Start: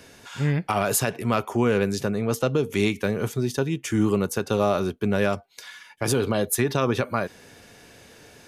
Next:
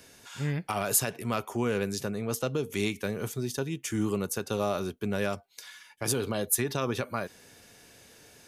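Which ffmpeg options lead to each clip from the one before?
ffmpeg -i in.wav -af "highshelf=frequency=4700:gain=8.5,volume=-7.5dB" out.wav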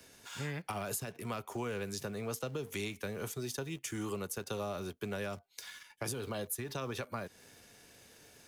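ffmpeg -i in.wav -filter_complex "[0:a]acrossover=split=140|410[link_01][link_02][link_03];[link_01]acompressor=threshold=-46dB:ratio=4[link_04];[link_02]acompressor=threshold=-46dB:ratio=4[link_05];[link_03]acompressor=threshold=-38dB:ratio=4[link_06];[link_04][link_05][link_06]amix=inputs=3:normalize=0,asplit=2[link_07][link_08];[link_08]aeval=exprs='val(0)*gte(abs(val(0)),0.00473)':channel_layout=same,volume=-4.5dB[link_09];[link_07][link_09]amix=inputs=2:normalize=0,volume=-4.5dB" out.wav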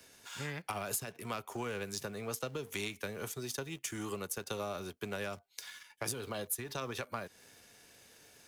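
ffmpeg -i in.wav -af "lowshelf=frequency=490:gain=-4.5,aeval=exprs='0.0708*(cos(1*acos(clip(val(0)/0.0708,-1,1)))-cos(1*PI/2))+0.00316*(cos(7*acos(clip(val(0)/0.0708,-1,1)))-cos(7*PI/2))':channel_layout=same,volume=3dB" out.wav

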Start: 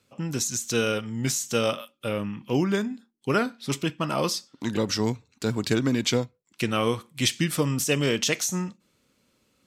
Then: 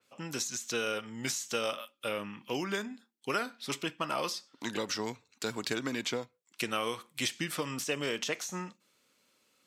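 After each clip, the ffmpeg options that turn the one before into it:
ffmpeg -i in.wav -filter_complex "[0:a]highpass=frequency=720:poles=1,acrossover=split=1500|5300[link_01][link_02][link_03];[link_01]acompressor=threshold=-31dB:ratio=4[link_04];[link_02]acompressor=threshold=-35dB:ratio=4[link_05];[link_03]acompressor=threshold=-39dB:ratio=4[link_06];[link_04][link_05][link_06]amix=inputs=3:normalize=0,adynamicequalizer=threshold=0.00398:dfrequency=3200:dqfactor=0.7:tfrequency=3200:tqfactor=0.7:attack=5:release=100:ratio=0.375:range=2.5:mode=cutabove:tftype=highshelf" out.wav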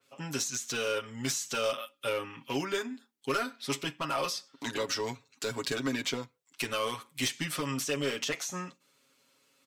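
ffmpeg -i in.wav -af "asoftclip=type=hard:threshold=-26dB,aecho=1:1:7.3:0.86" out.wav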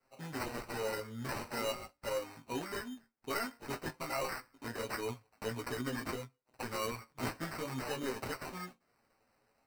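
ffmpeg -i in.wav -af "flanger=delay=15.5:depth=3.1:speed=1.4,acrusher=samples=13:mix=1:aa=0.000001,flanger=delay=7.4:depth=1.9:regen=51:speed=0.48:shape=triangular,volume=1dB" out.wav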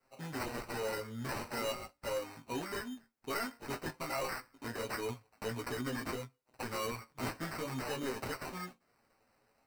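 ffmpeg -i in.wav -af "asoftclip=type=tanh:threshold=-30.5dB,volume=1.5dB" out.wav

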